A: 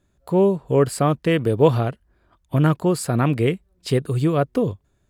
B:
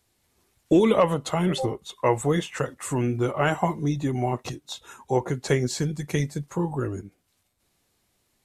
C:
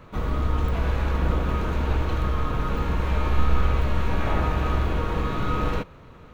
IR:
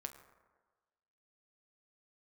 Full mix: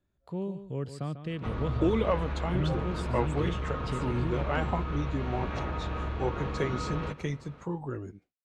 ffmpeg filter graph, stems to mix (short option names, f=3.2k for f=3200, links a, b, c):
-filter_complex "[0:a]acrossover=split=230|3000[a][b][c];[b]acompressor=threshold=-43dB:ratio=1.5[d];[a][d][c]amix=inputs=3:normalize=0,volume=-12dB,asplit=2[e][f];[f]volume=-11dB[g];[1:a]agate=range=-33dB:threshold=-45dB:ratio=3:detection=peak,adelay=1100,volume=-8dB[h];[2:a]highpass=54,acompressor=threshold=-26dB:ratio=6,adelay=1300,volume=-4dB,asplit=2[i][j];[j]volume=-16.5dB[k];[g][k]amix=inputs=2:normalize=0,aecho=0:1:145:1[l];[e][h][i][l]amix=inputs=4:normalize=0,lowpass=4.7k"